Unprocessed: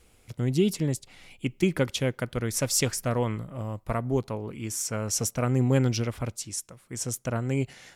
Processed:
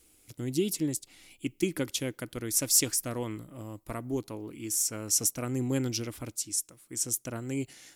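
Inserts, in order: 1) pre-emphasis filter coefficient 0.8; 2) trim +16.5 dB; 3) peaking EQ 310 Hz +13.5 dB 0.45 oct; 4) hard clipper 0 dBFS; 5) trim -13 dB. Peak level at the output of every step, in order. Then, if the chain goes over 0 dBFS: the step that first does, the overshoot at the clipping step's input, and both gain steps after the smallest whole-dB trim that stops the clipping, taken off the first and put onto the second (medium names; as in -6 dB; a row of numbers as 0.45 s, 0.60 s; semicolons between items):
-13.5 dBFS, +3.0 dBFS, +3.0 dBFS, 0.0 dBFS, -13.0 dBFS; step 2, 3.0 dB; step 2 +13.5 dB, step 5 -10 dB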